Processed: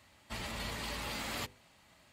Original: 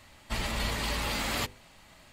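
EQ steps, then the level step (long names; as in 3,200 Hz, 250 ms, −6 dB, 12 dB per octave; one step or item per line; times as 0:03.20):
high-pass filter 62 Hz
−7.5 dB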